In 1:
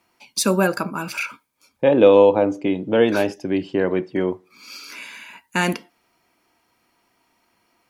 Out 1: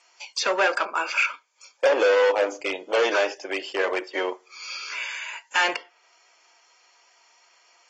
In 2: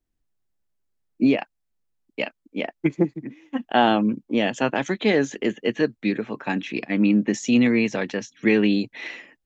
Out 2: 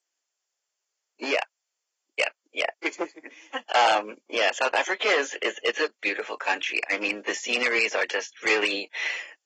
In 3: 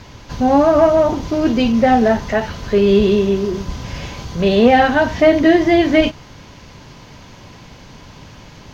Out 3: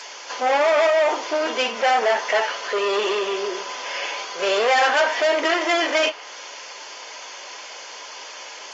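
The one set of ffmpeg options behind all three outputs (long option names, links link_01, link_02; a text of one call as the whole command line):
ffmpeg -i in.wav -filter_complex "[0:a]aemphasis=mode=production:type=riaa,acrossover=split=3500[link_01][link_02];[link_02]acompressor=threshold=-43dB:ratio=16[link_03];[link_01][link_03]amix=inputs=2:normalize=0,asoftclip=type=hard:threshold=-19dB,highpass=frequency=450:width=0.5412,highpass=frequency=450:width=1.3066,bandreject=frequency=3900:width=8.1,volume=3.5dB" -ar 32000 -c:a aac -b:a 24k out.aac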